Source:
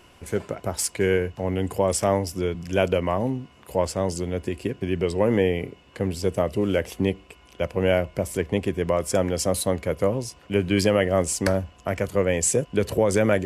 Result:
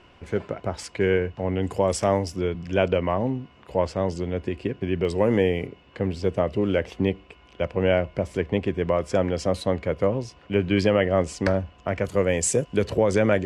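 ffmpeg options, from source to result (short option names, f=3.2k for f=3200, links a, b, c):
-af "asetnsamples=n=441:p=0,asendcmd='1.63 lowpass f 6700;2.36 lowpass f 3800;5.05 lowpass f 8000;5.67 lowpass f 3900;12.05 lowpass f 8800;12.83 lowpass f 5200',lowpass=3.7k"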